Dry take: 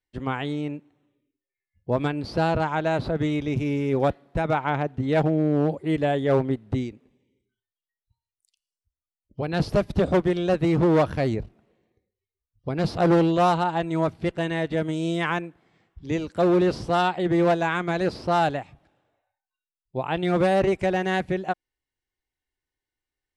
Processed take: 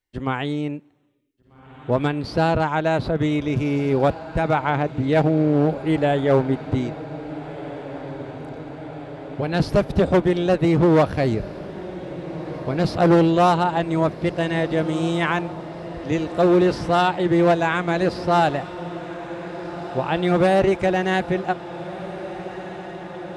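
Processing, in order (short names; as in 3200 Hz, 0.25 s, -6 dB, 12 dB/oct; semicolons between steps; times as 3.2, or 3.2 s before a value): diffused feedback echo 1.679 s, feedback 74%, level -15 dB; gain +3.5 dB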